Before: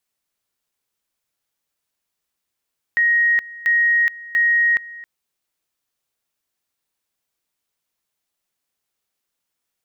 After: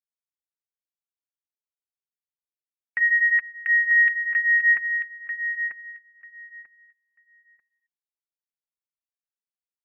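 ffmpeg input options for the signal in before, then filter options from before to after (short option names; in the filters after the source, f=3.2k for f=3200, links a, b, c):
-f lavfi -i "aevalsrc='pow(10,(-13-20*gte(mod(t,0.69),0.42))/20)*sin(2*PI*1880*t)':d=2.07:s=44100"
-filter_complex "[0:a]afftdn=nr=26:nf=-39,flanger=delay=4.2:depth=7:regen=-19:speed=0.24:shape=sinusoidal,asplit=2[a][b];[b]adelay=941,lowpass=f=2.3k:p=1,volume=-6dB,asplit=2[c][d];[d]adelay=941,lowpass=f=2.3k:p=1,volume=0.21,asplit=2[e][f];[f]adelay=941,lowpass=f=2.3k:p=1,volume=0.21[g];[a][c][e][g]amix=inputs=4:normalize=0"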